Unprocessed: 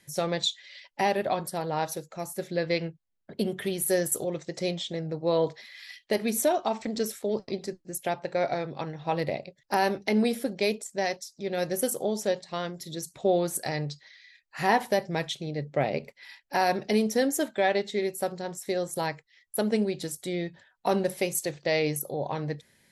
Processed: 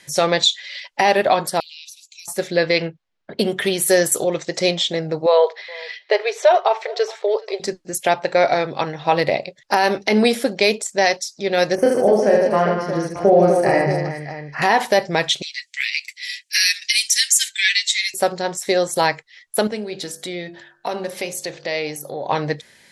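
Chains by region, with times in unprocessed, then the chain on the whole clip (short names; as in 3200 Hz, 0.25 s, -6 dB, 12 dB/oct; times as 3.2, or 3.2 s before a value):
1.6–2.28 steep high-pass 2400 Hz 96 dB/oct + compressor 12:1, threshold -48 dBFS
2.82–3.39 hard clip -25 dBFS + air absorption 130 m
5.26–7.6 brick-wall FIR high-pass 370 Hz + air absorption 190 m + echo 0.422 s -23.5 dB
11.75–14.62 running mean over 12 samples + low shelf 160 Hz +5.5 dB + reverse bouncing-ball echo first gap 30 ms, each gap 1.5×, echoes 6, each echo -2 dB
15.42–18.14 steep high-pass 1900 Hz 48 dB/oct + bell 8300 Hz +13 dB 1.4 oct + comb 7.1 ms, depth 66%
19.67–22.29 compressor 2:1, threshold -40 dBFS + bell 8300 Hz -3.5 dB 0.59 oct + de-hum 49.08 Hz, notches 36
whole clip: LPF 8400 Hz 12 dB/oct; low shelf 340 Hz -11.5 dB; maximiser +18.5 dB; gain -3.5 dB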